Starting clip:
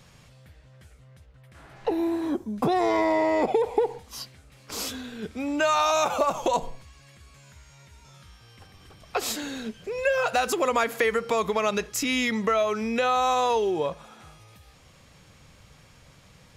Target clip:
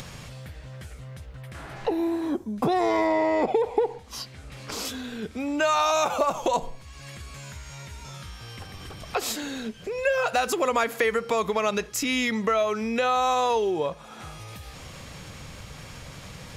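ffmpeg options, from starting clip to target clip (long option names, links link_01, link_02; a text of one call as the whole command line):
ffmpeg -i in.wav -filter_complex "[0:a]asettb=1/sr,asplit=3[link_01][link_02][link_03];[link_01]atrim=end=3.074[link_04];[link_02]atrim=start=3.07:end=4.85,asetpts=PTS-STARTPTS,afade=type=in:duration=0.004:curve=qsin,afade=type=out:start_time=1.776:duration=0.004:curve=qsin,highshelf=frequency=8800:gain=-9[link_05];[link_03]atrim=start=4.846[link_06];[link_04][link_05]acrossfade=duration=0.004:curve1=hsin:curve2=qsin[link_07];[link_07][link_06]acrossfade=duration=0.004:curve1=qsin:curve2=hsin,acompressor=mode=upward:threshold=-29dB:ratio=2.5" out.wav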